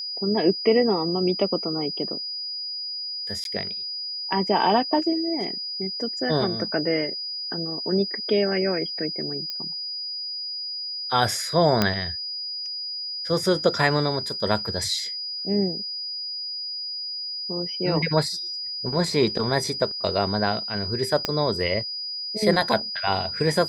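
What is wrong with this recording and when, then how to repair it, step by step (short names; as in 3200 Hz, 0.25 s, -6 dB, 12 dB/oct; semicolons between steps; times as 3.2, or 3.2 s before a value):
tone 4900 Hz -29 dBFS
3.44–3.45 gap 12 ms
9.5 pop -17 dBFS
11.82 pop -5 dBFS
21.25 pop -8 dBFS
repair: de-click; notch 4900 Hz, Q 30; interpolate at 3.44, 12 ms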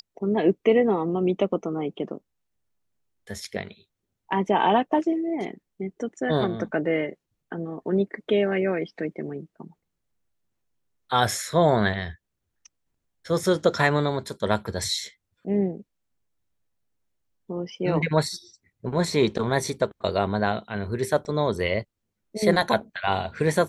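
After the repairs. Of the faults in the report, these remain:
21.25 pop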